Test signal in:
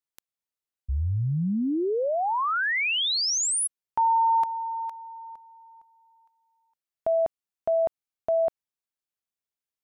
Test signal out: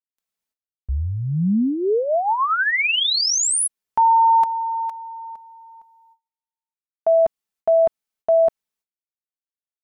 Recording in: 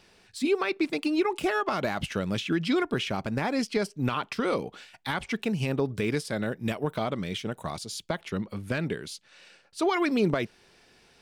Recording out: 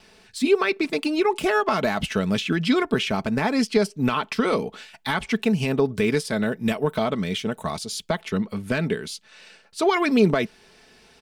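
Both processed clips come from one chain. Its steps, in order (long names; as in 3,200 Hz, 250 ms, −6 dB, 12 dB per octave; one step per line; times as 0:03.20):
noise gate with hold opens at −56 dBFS, hold 291 ms, range −35 dB
comb filter 4.6 ms, depth 41%
level +5 dB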